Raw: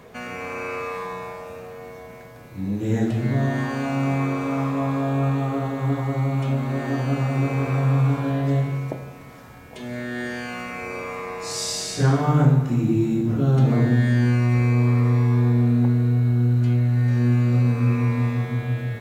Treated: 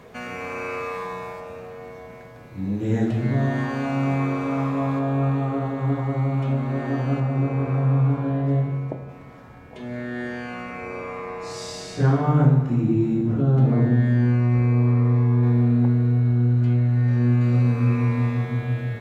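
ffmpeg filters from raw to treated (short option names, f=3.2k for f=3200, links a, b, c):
-af "asetnsamples=n=441:p=0,asendcmd='1.4 lowpass f 4000;4.99 lowpass f 2100;7.2 lowpass f 1000;9.09 lowpass f 1800;13.42 lowpass f 1100;15.43 lowpass f 2200;17.41 lowpass f 4400',lowpass=f=8.3k:p=1"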